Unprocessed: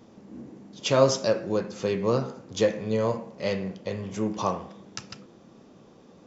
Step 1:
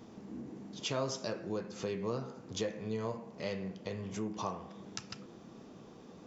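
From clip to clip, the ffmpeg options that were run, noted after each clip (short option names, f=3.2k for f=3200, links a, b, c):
-af "bandreject=f=550:w=12,acompressor=threshold=-42dB:ratio=2"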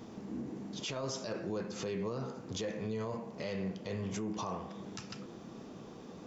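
-af "alimiter=level_in=9dB:limit=-24dB:level=0:latency=1:release=19,volume=-9dB,volume=4dB"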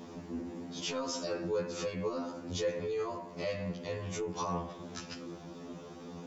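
-af "afftfilt=real='re*2*eq(mod(b,4),0)':imag='im*2*eq(mod(b,4),0)':win_size=2048:overlap=0.75,volume=5dB"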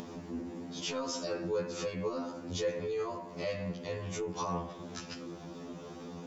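-af "acompressor=mode=upward:threshold=-40dB:ratio=2.5"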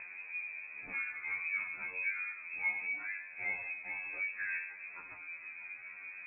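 -af "flanger=delay=17:depth=3.9:speed=0.76,lowpass=f=2.3k:t=q:w=0.5098,lowpass=f=2.3k:t=q:w=0.6013,lowpass=f=2.3k:t=q:w=0.9,lowpass=f=2.3k:t=q:w=2.563,afreqshift=-2700"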